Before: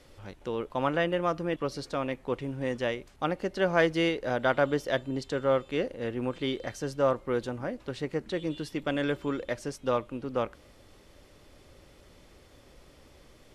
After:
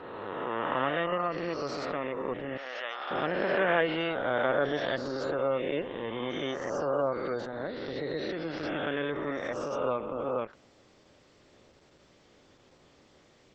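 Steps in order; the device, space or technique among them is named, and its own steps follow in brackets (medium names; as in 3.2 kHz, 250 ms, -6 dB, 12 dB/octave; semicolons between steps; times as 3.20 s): reverse spectral sustain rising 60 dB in 2.59 s; 2.57–3.11 s: high-pass 860 Hz 12 dB/octave; noise-suppressed video call (high-pass 120 Hz 12 dB/octave; spectral gate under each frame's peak -30 dB strong; trim -5 dB; Opus 12 kbps 48 kHz)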